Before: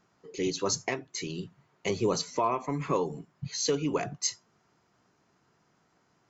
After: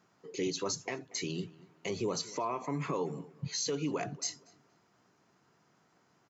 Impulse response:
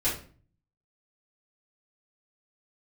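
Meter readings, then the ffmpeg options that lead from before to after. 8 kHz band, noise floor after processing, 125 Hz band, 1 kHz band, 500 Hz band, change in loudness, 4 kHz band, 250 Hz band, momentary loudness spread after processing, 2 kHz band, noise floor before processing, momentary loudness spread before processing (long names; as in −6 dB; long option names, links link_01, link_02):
can't be measured, −70 dBFS, −3.5 dB, −6.5 dB, −5.5 dB, −5.0 dB, −3.5 dB, −4.0 dB, 8 LU, −4.5 dB, −70 dBFS, 11 LU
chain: -filter_complex "[0:a]alimiter=level_in=0.5dB:limit=-24dB:level=0:latency=1:release=121,volume=-0.5dB,highpass=100,asplit=2[link_01][link_02];[link_02]adelay=235,lowpass=frequency=2400:poles=1,volume=-20.5dB,asplit=2[link_03][link_04];[link_04]adelay=235,lowpass=frequency=2400:poles=1,volume=0.35,asplit=2[link_05][link_06];[link_06]adelay=235,lowpass=frequency=2400:poles=1,volume=0.35[link_07];[link_01][link_03][link_05][link_07]amix=inputs=4:normalize=0"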